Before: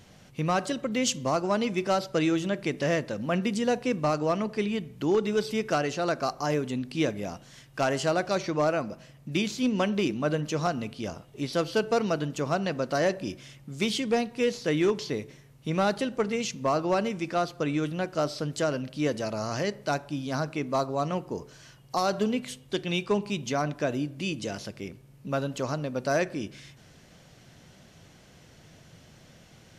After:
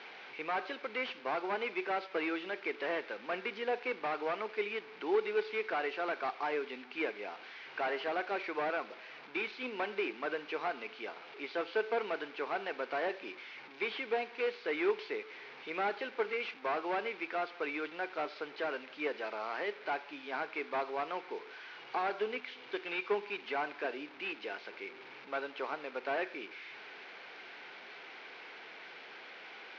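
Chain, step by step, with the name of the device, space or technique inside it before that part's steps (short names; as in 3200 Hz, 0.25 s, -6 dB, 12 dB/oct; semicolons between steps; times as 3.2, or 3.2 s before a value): digital answering machine (BPF 390–3200 Hz; delta modulation 32 kbps, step -41.5 dBFS; speaker cabinet 360–4400 Hz, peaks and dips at 410 Hz +5 dB, 590 Hz -7 dB, 850 Hz +4 dB, 1500 Hz +5 dB, 2300 Hz +9 dB); gain -4.5 dB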